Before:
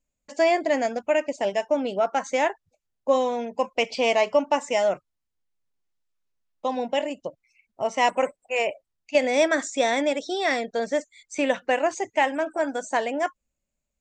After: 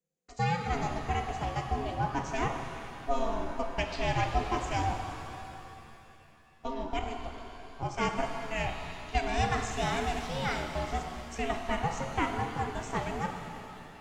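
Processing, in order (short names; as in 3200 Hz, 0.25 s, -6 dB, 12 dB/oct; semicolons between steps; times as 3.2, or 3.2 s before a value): frequency shift -190 Hz; ring modulator 340 Hz; shimmer reverb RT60 3 s, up +7 st, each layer -8 dB, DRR 4 dB; gain -6 dB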